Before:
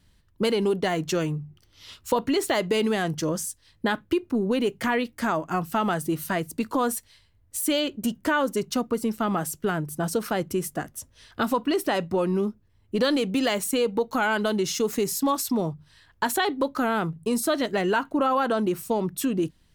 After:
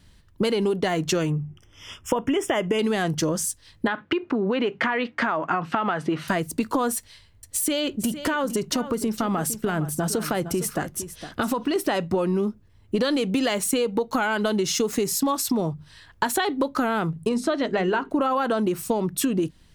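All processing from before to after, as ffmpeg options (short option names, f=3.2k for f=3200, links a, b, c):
-filter_complex "[0:a]asettb=1/sr,asplit=3[a][b][c];[a]atrim=end=1.304[d];[b]atrim=start=1.3:end=2.79,asetpts=PTS-STARTPTS,afade=t=in:d=0.004:c=qsin,afade=t=out:st=1.486:d=0.004:c=qsin,asuperstop=centerf=4200:order=12:qfactor=2.8,highshelf=f=8k:g=-7.5[e];[c]atrim=start=2.786[f];[d][e]acrossfade=d=0.004:c1=hsin:c2=qsin[g];[g][f]acrossfade=d=0.004:c1=qsin:c2=hsin,asettb=1/sr,asplit=3[h][i][j];[h]atrim=end=3.874[k];[i]atrim=start=3.87:end=6.28,asetpts=PTS-STARTPTS,afade=t=in:d=0.004:c=qsin,afade=t=out:st=2.406:d=0.004:c=qsin,equalizer=f=1.5k:t=o:w=3:g=9,acompressor=threshold=-23dB:ratio=3:attack=3.2:release=140:knee=1:detection=peak,highpass=140,lowpass=3.4k[l];[j]atrim=start=6.276[m];[k][l]acrossfade=d=0.004:c1=hsin:c2=qsin[n];[n][m]acrossfade=d=0.004:c1=qsin:c2=hsin,asettb=1/sr,asplit=3[o][p][q];[o]atrim=end=6.974[r];[p]atrim=start=6.97:end=11.76,asetpts=PTS-STARTPTS,afade=t=in:d=0.004:c=qsin,afade=t=out:st=4.786:d=0.004:c=qsin,acompressor=threshold=-25dB:ratio=6:attack=3.2:release=140:knee=1:detection=peak,aecho=1:1:459:0.211,atrim=end_sample=211239[s];[q]atrim=start=11.756[t];[r][s]acrossfade=d=0.004:c1=hsin:c2=qsin[u];[u][t]acrossfade=d=0.004:c1=qsin:c2=hsin,asettb=1/sr,asplit=3[v][w][x];[v]atrim=end=17.294[y];[w]atrim=start=17.29:end=18.1,asetpts=PTS-STARTPTS,afade=t=in:d=0.004:c=qsin,afade=t=out:st=0.806:d=0.004:c=qsin,lowpass=7.6k,highshelf=f=4.8k:g=-9.5,bandreject=f=50:t=h:w=6,bandreject=f=100:t=h:w=6,bandreject=f=150:t=h:w=6,bandreject=f=200:t=h:w=6,bandreject=f=250:t=h:w=6,bandreject=f=300:t=h:w=6,bandreject=f=350:t=h:w=6,bandreject=f=400:t=h:w=6,bandreject=f=450:t=h:w=6[z];[x]atrim=start=18.096[aa];[y][z]acrossfade=d=0.004:c1=hsin:c2=qsin[ab];[ab][aa]acrossfade=d=0.004:c1=qsin:c2=hsin,equalizer=f=15k:w=2.6:g=-13,acompressor=threshold=-27dB:ratio=6,volume=7dB"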